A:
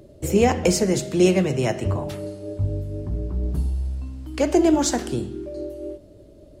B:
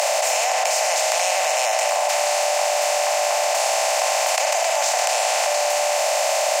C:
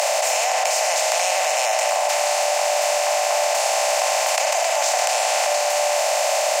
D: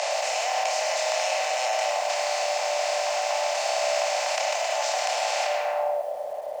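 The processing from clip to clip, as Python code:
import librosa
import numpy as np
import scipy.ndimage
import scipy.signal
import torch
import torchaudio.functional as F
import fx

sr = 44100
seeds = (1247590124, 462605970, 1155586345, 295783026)

y1 = fx.bin_compress(x, sr, power=0.2)
y1 = scipy.signal.sosfilt(scipy.signal.butter(12, 600.0, 'highpass', fs=sr, output='sos'), y1)
y1 = fx.env_flatten(y1, sr, amount_pct=100)
y1 = y1 * librosa.db_to_amplitude(-5.5)
y2 = fx.echo_tape(y1, sr, ms=466, feedback_pct=79, wet_db=-15.5, lp_hz=2400.0, drive_db=6.0, wow_cents=16)
y3 = fx.doubler(y2, sr, ms=29.0, db=-7)
y3 = fx.filter_sweep_lowpass(y3, sr, from_hz=5200.0, to_hz=450.0, start_s=5.41, end_s=6.05, q=0.99)
y3 = fx.echo_crushed(y3, sr, ms=104, feedback_pct=35, bits=6, wet_db=-11)
y3 = y3 * librosa.db_to_amplitude(-7.0)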